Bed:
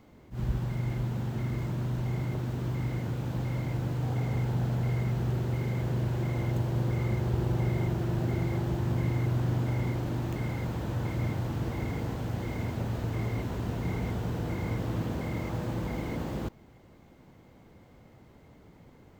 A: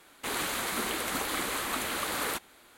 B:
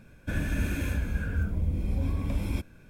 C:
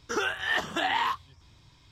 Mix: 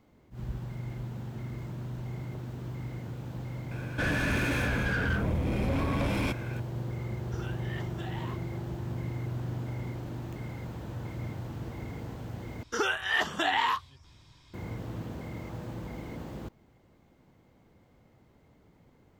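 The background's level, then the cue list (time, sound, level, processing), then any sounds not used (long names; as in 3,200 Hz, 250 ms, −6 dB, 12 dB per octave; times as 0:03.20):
bed −6.5 dB
0:03.71: mix in B −4 dB + mid-hump overdrive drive 29 dB, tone 2,000 Hz, clips at −16.5 dBFS
0:07.22: mix in C −17.5 dB
0:12.63: overwrite with C
not used: A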